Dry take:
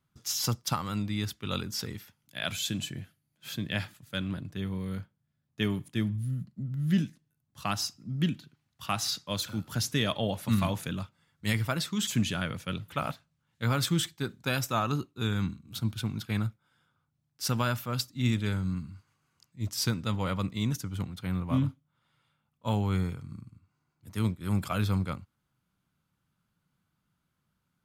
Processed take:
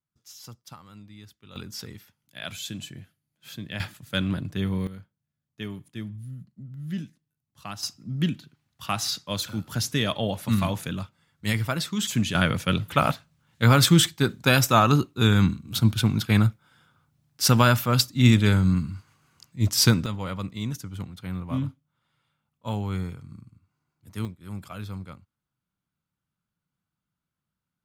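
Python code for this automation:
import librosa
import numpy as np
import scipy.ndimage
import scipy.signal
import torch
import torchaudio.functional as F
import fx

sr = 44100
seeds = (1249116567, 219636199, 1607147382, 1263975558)

y = fx.gain(x, sr, db=fx.steps((0.0, -15.0), (1.56, -3.0), (3.8, 7.0), (4.87, -6.0), (7.83, 3.0), (12.35, 10.5), (20.06, -1.0), (24.25, -8.0)))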